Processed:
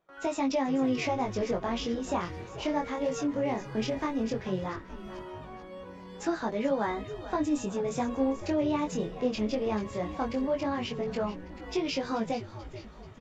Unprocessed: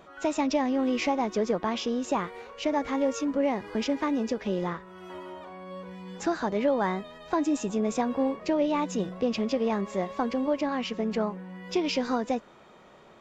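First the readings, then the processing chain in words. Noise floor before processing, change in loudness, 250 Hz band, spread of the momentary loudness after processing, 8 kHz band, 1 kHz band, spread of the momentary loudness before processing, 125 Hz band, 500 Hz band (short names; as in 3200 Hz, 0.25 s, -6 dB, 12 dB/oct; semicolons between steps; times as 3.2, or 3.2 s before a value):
-53 dBFS, -2.5 dB, -2.5 dB, 14 LU, n/a, -3.0 dB, 13 LU, +1.0 dB, -2.5 dB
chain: frequency-shifting echo 0.435 s, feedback 53%, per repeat -150 Hz, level -13 dB; chorus 0.16 Hz, delay 18 ms, depth 5.9 ms; gate with hold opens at -45 dBFS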